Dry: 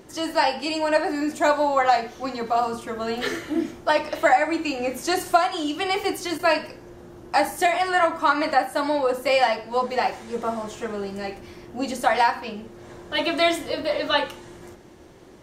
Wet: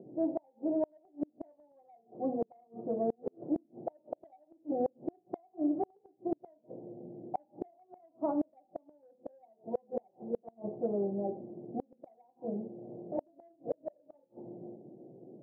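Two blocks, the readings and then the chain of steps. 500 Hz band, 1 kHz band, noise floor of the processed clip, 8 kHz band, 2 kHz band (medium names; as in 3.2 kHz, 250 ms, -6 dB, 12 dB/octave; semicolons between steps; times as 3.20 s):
-13.0 dB, -23.0 dB, -72 dBFS, under -40 dB, under -40 dB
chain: level-controlled noise filter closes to 560 Hz, open at -14.5 dBFS; Chebyshev band-pass 130–740 Hz, order 4; in parallel at -8 dB: saturation -16.5 dBFS, distortion -16 dB; on the sum: inverted gate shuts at -17 dBFS, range -37 dB; trim -4.5 dB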